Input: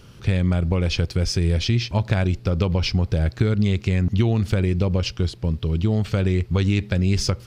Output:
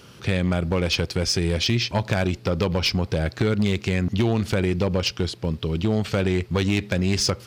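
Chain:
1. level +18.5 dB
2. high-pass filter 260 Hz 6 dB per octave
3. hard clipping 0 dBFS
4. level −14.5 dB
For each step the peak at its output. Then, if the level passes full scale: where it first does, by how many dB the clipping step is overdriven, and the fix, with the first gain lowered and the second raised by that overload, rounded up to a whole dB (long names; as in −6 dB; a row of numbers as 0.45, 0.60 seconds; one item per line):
+13.0, +9.0, 0.0, −14.5 dBFS
step 1, 9.0 dB
step 1 +9.5 dB, step 4 −5.5 dB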